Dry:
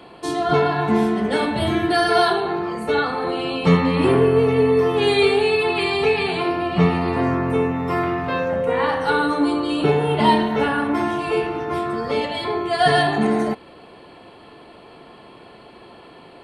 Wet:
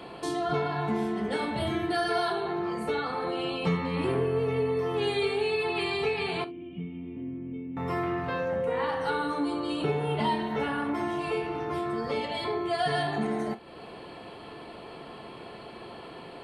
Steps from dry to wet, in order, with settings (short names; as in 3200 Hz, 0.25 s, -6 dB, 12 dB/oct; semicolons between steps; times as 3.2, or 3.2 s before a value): compressor 2:1, threshold -35 dBFS, peak gain reduction 13.5 dB; 6.44–7.77 vocal tract filter i; non-linear reverb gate 90 ms falling, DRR 10 dB